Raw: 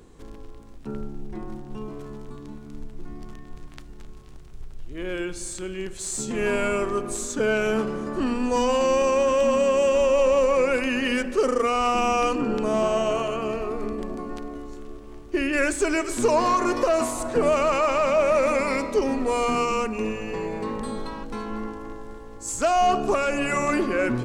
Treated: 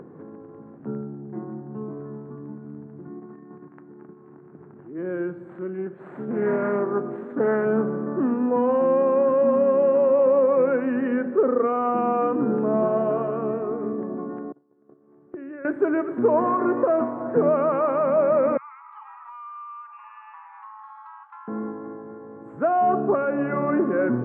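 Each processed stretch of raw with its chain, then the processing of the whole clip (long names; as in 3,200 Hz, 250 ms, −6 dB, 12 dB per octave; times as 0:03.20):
0:03.07–0:04.98: noise gate −38 dBFS, range −7 dB + loudspeaker in its box 130–2,800 Hz, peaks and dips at 130 Hz −9 dB, 350 Hz +5 dB, 590 Hz −6 dB, 930 Hz +3 dB
0:05.49–0:07.65: variable-slope delta modulation 64 kbit/s + high-pass filter 140 Hz + highs frequency-modulated by the lows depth 0.23 ms
0:14.52–0:15.65: noise gate −32 dBFS, range −31 dB + downward compressor 12 to 1, threshold −34 dBFS + high-pass filter 110 Hz
0:18.57–0:21.48: Chebyshev high-pass with heavy ripple 840 Hz, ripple 9 dB + downward compressor 2.5 to 1, threshold −38 dBFS
whole clip: elliptic band-pass filter 140–1,600 Hz, stop band 50 dB; tilt shelving filter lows +4.5 dB, about 790 Hz; upward compression, threshold −36 dBFS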